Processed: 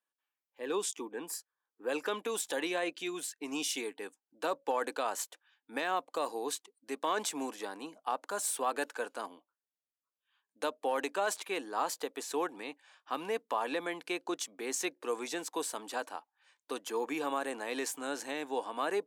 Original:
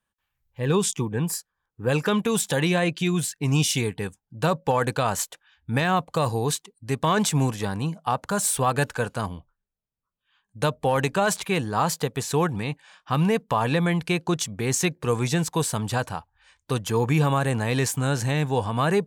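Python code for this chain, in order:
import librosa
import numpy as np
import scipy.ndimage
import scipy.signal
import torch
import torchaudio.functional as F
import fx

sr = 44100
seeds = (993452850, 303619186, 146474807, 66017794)

y = scipy.signal.sosfilt(scipy.signal.ellip(4, 1.0, 80, 280.0, 'highpass', fs=sr, output='sos'), x)
y = y * librosa.db_to_amplitude(-9.0)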